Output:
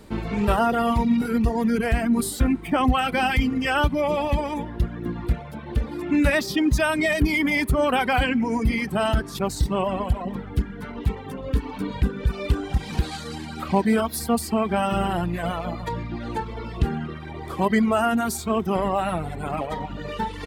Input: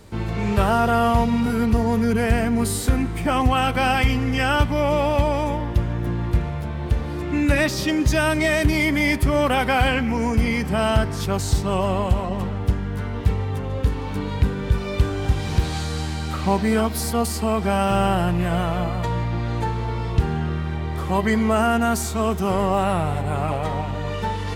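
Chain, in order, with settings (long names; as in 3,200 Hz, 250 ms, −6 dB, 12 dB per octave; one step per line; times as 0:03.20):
reverb reduction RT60 1.9 s
graphic EQ with 15 bands 100 Hz −8 dB, 250 Hz +5 dB, 6,300 Hz −4 dB
tempo change 1.2×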